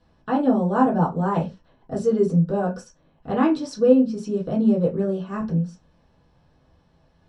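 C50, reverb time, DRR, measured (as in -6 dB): 14.0 dB, not exponential, -6.5 dB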